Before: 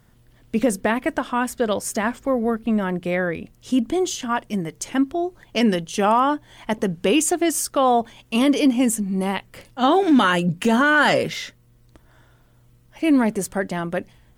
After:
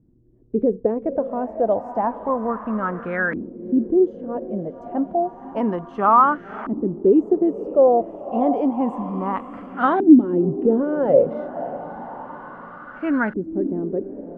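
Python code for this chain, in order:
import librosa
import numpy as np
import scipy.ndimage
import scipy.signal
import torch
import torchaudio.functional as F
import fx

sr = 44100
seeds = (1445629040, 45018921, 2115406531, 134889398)

y = fx.echo_diffused(x, sr, ms=555, feedback_pct=59, wet_db=-13.0)
y = fx.filter_lfo_lowpass(y, sr, shape='saw_up', hz=0.3, low_hz=300.0, high_hz=1600.0, q=5.0)
y = F.gain(torch.from_numpy(y), -5.0).numpy()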